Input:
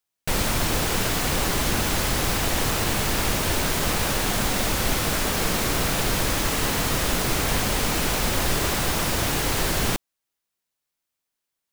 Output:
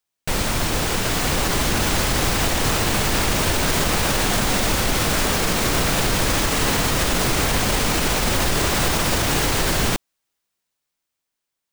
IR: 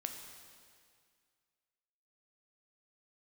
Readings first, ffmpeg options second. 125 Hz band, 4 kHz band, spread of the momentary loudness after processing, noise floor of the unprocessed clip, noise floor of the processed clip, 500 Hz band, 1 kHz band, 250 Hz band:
+3.5 dB, +3.5 dB, 2 LU, −83 dBFS, −82 dBFS, +3.5 dB, +3.5 dB, +3.5 dB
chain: -af "dynaudnorm=framelen=370:gausssize=9:maxgain=6dB,equalizer=frequency=12000:width_type=o:width=0.2:gain=-8.5,alimiter=limit=-11.5dB:level=0:latency=1,volume=1.5dB"

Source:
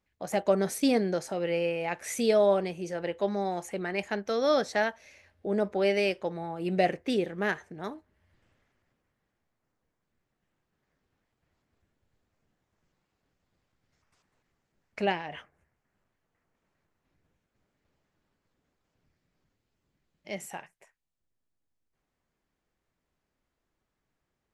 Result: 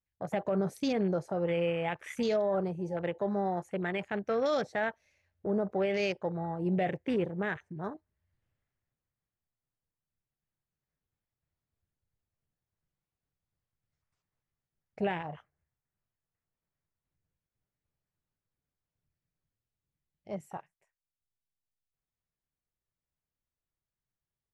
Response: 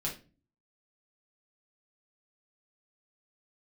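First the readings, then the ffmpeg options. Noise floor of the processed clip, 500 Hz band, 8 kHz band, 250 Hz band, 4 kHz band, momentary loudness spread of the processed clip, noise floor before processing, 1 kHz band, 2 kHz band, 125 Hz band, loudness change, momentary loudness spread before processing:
below −85 dBFS, −4.0 dB, below −10 dB, −2.0 dB, −6.5 dB, 12 LU, −83 dBFS, −3.5 dB, −4.0 dB, +2.0 dB, −3.5 dB, 14 LU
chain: -af "afwtdn=0.0112,alimiter=limit=-21dB:level=0:latency=1:release=31,lowshelf=frequency=180:width_type=q:width=1.5:gain=6"

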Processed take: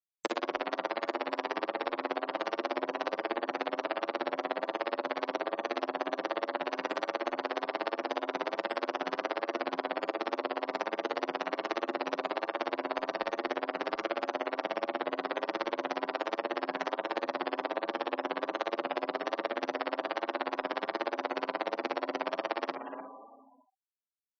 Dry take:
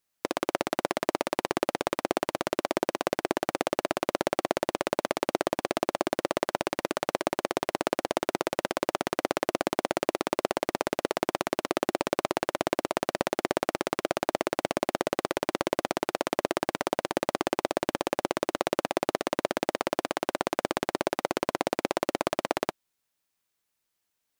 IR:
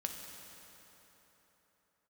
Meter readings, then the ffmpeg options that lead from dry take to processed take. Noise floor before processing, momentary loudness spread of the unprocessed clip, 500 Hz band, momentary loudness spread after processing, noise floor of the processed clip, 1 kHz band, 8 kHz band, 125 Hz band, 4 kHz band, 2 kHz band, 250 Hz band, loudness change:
−81 dBFS, 2 LU, −4.5 dB, 1 LU, −59 dBFS, −2.5 dB, below −15 dB, below −15 dB, −4.5 dB, −2.0 dB, −6.5 dB, −4.0 dB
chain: -filter_complex "[0:a]highpass=180,lowshelf=frequency=370:gain=-5.5,asplit=2[link_01][link_02];[link_02]adelay=300,highpass=300,lowpass=3400,asoftclip=type=hard:threshold=-17dB,volume=-14dB[link_03];[link_01][link_03]amix=inputs=2:normalize=0,asplit=2[link_04][link_05];[1:a]atrim=start_sample=2205,adelay=72[link_06];[link_05][link_06]afir=irnorm=-1:irlink=0,volume=-8dB[link_07];[link_04][link_07]amix=inputs=2:normalize=0,acompressor=threshold=-29dB:ratio=12,highshelf=frequency=5300:gain=-5,afftfilt=real='re*gte(hypot(re,im),0.00708)':imag='im*gte(hypot(re,im),0.00708)':win_size=1024:overlap=0.75,asplit=2[link_08][link_09];[link_09]adelay=49,volume=-13dB[link_10];[link_08][link_10]amix=inputs=2:normalize=0,acrossover=split=270|3000[link_11][link_12][link_13];[link_11]acompressor=threshold=-38dB:ratio=10[link_14];[link_14][link_12][link_13]amix=inputs=3:normalize=0,asplit=2[link_15][link_16];[link_16]adelay=7.4,afreqshift=1.3[link_17];[link_15][link_17]amix=inputs=2:normalize=1,volume=6.5dB"

